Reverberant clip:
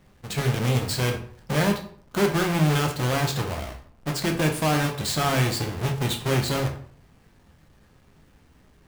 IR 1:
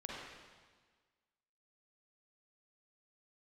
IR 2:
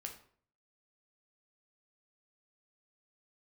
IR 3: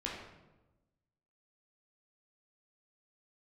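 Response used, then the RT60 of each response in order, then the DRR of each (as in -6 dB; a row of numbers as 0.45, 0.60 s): 2; 1.5, 0.55, 1.1 s; -4.5, 2.0, -4.5 dB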